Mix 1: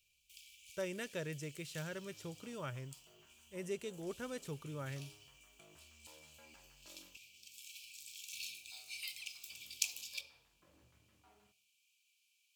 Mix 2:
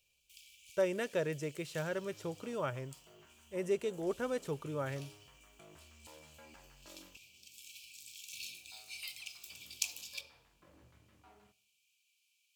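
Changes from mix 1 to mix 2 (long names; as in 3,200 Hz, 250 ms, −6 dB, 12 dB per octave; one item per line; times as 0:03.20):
speech: add parametric band 640 Hz +10 dB 2.8 octaves
second sound +6.0 dB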